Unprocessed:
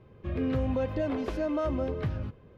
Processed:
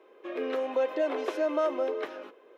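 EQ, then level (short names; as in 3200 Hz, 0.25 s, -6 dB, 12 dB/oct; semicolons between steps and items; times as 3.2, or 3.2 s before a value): steep high-pass 340 Hz 36 dB/oct; notch 4600 Hz, Q 11; +4.0 dB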